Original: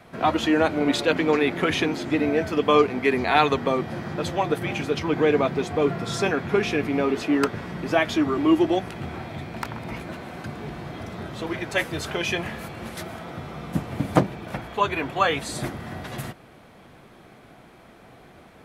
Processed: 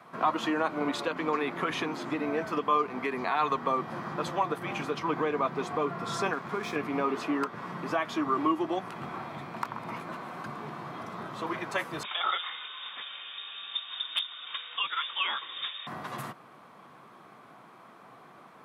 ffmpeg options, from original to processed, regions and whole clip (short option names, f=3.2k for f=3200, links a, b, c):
-filter_complex "[0:a]asettb=1/sr,asplit=3[a][b][c];[a]atrim=end=6.334[d];[b]atrim=start=6.33:end=6.76,asetpts=PTS-STARTPTS,afade=t=in:d=0.004:c=qsin,afade=t=out:st=0.426:d=0.004:c=qsin,asuperstop=centerf=2800:order=4:qfactor=5.4,acompressor=threshold=-22dB:ratio=4:attack=3.2:release=140:knee=1:detection=peak,aeval=exprs='sgn(val(0))*max(abs(val(0))-0.0112,0)':c=same[e];[c]atrim=start=6.756[f];[d][e]acrossfade=d=0.004:c1=hsin:c2=qsin[g];[g][f]acrossfade=d=0.004:c1=qsin:c2=hsin,asettb=1/sr,asplit=3[h][i][j];[h]atrim=end=12.034[k];[i]atrim=start=12.03:end=15.87,asetpts=PTS-STARTPTS,afade=t=in:d=0.004:c=qsin,afade=t=out:st=3.836:d=0.004:c=qsin,lowpass=f=3.2k:t=q:w=0.5098,lowpass=f=3.2k:t=q:w=0.6013,lowpass=f=3.2k:t=q:w=0.9,lowpass=f=3.2k:t=q:w=2.563,afreqshift=-3800,asoftclip=type=hard:threshold=-8dB[l];[j]atrim=start=15.866[m];[k][l]acrossfade=d=0.004:c1=hsin:c2=qsin[n];[n][m]acrossfade=d=0.004:c1=qsin:c2=hsin,alimiter=limit=-14.5dB:level=0:latency=1:release=239,highpass=f=130:w=0.5412,highpass=f=130:w=1.3066,equalizer=f=1.1k:t=o:w=0.68:g=13.5,volume=-7dB"